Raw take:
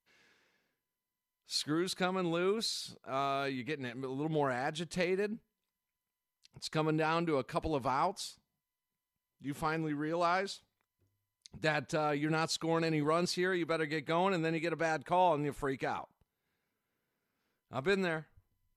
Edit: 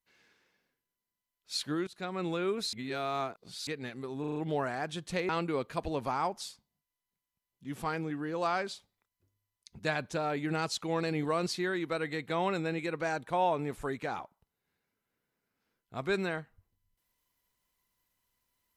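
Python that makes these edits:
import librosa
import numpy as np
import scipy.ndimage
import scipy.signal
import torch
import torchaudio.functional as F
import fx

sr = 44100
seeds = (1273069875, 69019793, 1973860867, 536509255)

y = fx.edit(x, sr, fx.fade_in_from(start_s=1.87, length_s=0.36, floor_db=-22.0),
    fx.reverse_span(start_s=2.73, length_s=0.94),
    fx.stutter(start_s=4.2, slice_s=0.04, count=5),
    fx.cut(start_s=5.13, length_s=1.95), tone=tone)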